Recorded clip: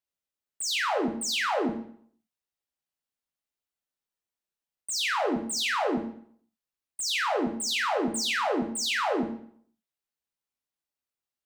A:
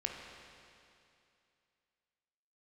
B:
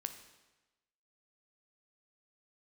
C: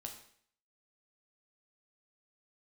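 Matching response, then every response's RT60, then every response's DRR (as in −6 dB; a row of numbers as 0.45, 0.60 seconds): C; 2.6, 1.1, 0.60 seconds; 0.5, 7.5, 2.0 decibels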